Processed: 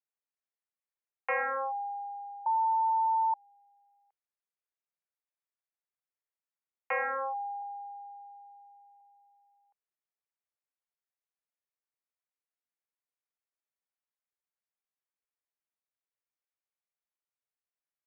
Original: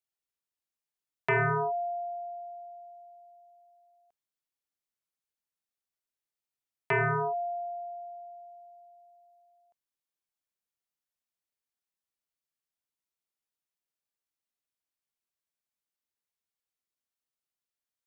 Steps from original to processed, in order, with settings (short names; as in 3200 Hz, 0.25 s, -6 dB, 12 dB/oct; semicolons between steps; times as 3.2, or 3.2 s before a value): mistuned SSB +110 Hz 290–2400 Hz; 2.46–3.34 bleep 894 Hz -20.5 dBFS; 7.62–9.01 tilt shelf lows -5.5 dB, about 830 Hz; gain -3.5 dB